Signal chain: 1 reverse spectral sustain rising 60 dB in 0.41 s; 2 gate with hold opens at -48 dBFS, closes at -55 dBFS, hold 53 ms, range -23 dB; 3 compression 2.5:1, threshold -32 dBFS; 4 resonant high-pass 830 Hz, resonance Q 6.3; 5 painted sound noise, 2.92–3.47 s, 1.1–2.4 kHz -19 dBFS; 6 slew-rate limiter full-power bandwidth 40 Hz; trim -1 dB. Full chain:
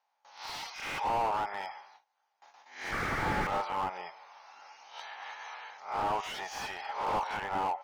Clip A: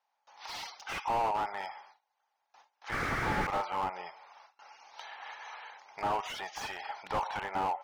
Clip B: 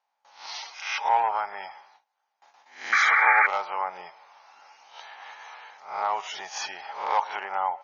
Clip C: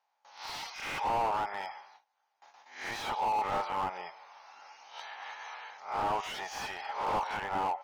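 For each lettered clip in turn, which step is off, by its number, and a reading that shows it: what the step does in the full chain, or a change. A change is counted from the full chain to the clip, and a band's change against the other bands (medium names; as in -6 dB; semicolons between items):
1, momentary loudness spread change -2 LU; 6, crest factor change +5.5 dB; 5, 125 Hz band -5.5 dB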